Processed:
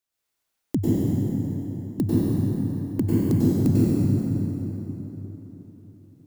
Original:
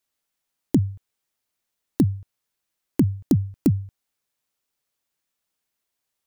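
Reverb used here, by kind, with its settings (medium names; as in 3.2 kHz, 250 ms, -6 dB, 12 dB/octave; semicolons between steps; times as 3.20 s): plate-style reverb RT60 4.1 s, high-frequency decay 0.65×, pre-delay 85 ms, DRR -9.5 dB; trim -6 dB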